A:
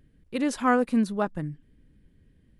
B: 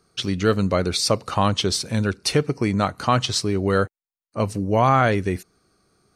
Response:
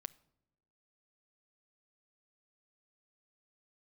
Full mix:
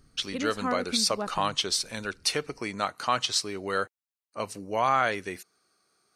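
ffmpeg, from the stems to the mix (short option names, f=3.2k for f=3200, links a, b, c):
-filter_complex "[0:a]acompressor=threshold=-36dB:ratio=1.5,volume=-1dB[a];[1:a]highpass=f=1k:p=1,volume=-2.5dB,asplit=2[b][c];[c]apad=whole_len=114316[d];[a][d]sidechaincompress=threshold=-30dB:ratio=8:attack=41:release=139[e];[e][b]amix=inputs=2:normalize=0"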